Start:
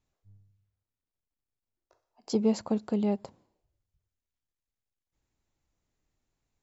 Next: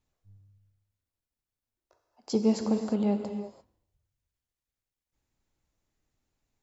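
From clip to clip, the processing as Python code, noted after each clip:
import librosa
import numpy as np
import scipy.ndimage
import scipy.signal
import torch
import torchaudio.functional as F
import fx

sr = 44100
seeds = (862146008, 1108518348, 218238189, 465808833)

y = fx.rev_gated(x, sr, seeds[0], gate_ms=370, shape='flat', drr_db=5.5)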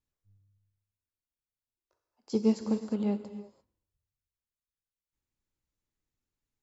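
y = fx.peak_eq(x, sr, hz=700.0, db=-7.0, octaves=0.49)
y = fx.upward_expand(y, sr, threshold_db=-38.0, expansion=1.5)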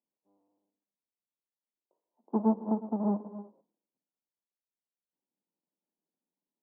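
y = fx.halfwave_hold(x, sr)
y = scipy.signal.sosfilt(scipy.signal.cheby1(4, 1.0, [180.0, 980.0], 'bandpass', fs=sr, output='sos'), y)
y = F.gain(torch.from_numpy(y), -3.0).numpy()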